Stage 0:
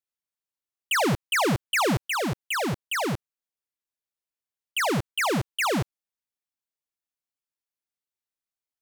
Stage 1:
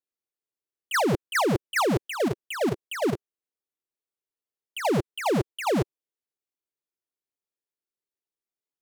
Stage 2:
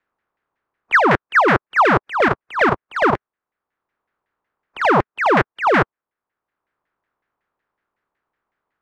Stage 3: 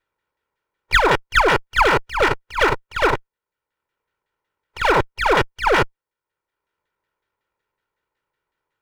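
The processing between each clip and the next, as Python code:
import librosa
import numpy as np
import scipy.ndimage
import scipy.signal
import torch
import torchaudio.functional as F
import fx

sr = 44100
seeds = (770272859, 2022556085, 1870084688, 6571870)

y1 = fx.peak_eq(x, sr, hz=390.0, db=13.0, octaves=1.1)
y1 = fx.level_steps(y1, sr, step_db=11)
y2 = fx.spec_flatten(y1, sr, power=0.48)
y2 = fx.filter_lfo_lowpass(y2, sr, shape='saw_down', hz=5.4, low_hz=930.0, high_hz=1900.0, q=2.7)
y2 = fx.band_squash(y2, sr, depth_pct=40)
y2 = y2 * librosa.db_to_amplitude(8.5)
y3 = fx.lower_of_two(y2, sr, delay_ms=2.1)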